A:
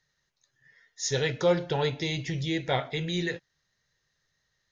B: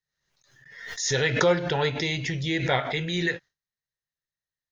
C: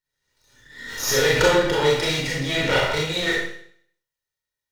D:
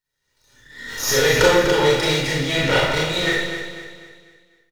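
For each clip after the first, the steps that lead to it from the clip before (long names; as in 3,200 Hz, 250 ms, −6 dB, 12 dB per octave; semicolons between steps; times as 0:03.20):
noise gate with hold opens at −53 dBFS; dynamic equaliser 1,700 Hz, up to +6 dB, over −44 dBFS, Q 1; background raised ahead of every attack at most 63 dB per second; level +1 dB
lower of the sound and its delayed copy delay 2.1 ms; four-comb reverb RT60 0.6 s, combs from 26 ms, DRR −4.5 dB; level +1 dB
repeating echo 247 ms, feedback 42%, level −9 dB; level +2 dB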